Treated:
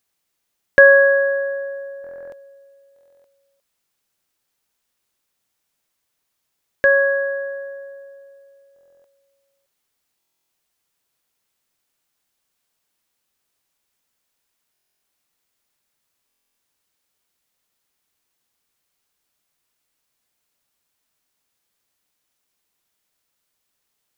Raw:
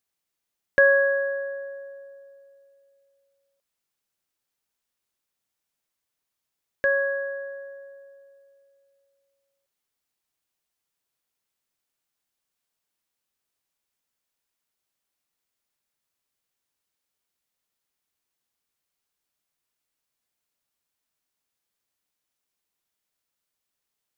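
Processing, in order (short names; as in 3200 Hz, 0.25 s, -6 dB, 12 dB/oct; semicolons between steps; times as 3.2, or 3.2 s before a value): stuck buffer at 2.02/2.94/8.74/10.19/14.72/16.27, samples 1024, times 12; gain +8 dB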